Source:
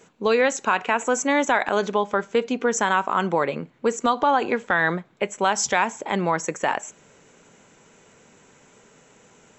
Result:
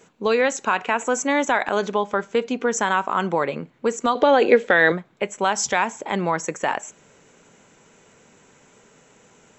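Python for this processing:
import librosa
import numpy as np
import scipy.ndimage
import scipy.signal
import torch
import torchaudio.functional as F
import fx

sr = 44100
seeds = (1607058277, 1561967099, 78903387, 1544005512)

y = fx.graphic_eq(x, sr, hz=(125, 250, 500, 1000, 2000, 4000), db=(-5, 3, 12, -7, 6, 6), at=(4.15, 4.92))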